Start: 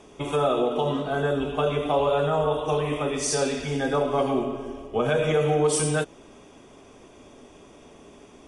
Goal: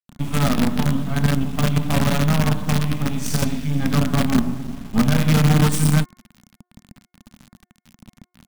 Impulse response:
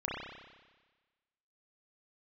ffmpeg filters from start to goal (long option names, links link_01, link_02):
-af "acrusher=bits=4:dc=4:mix=0:aa=0.000001,lowshelf=frequency=300:width_type=q:width=3:gain=11,bandreject=frequency=358.5:width_type=h:width=4,bandreject=frequency=717:width_type=h:width=4,bandreject=frequency=1075.5:width_type=h:width=4,bandreject=frequency=1434:width_type=h:width=4,bandreject=frequency=1792.5:width_type=h:width=4,bandreject=frequency=2151:width_type=h:width=4"